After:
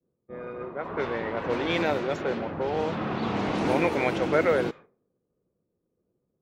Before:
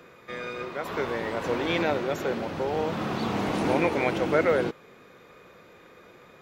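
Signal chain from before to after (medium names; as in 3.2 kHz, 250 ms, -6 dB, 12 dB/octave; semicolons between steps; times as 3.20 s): expander -39 dBFS; level-controlled noise filter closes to 310 Hz, open at -21 dBFS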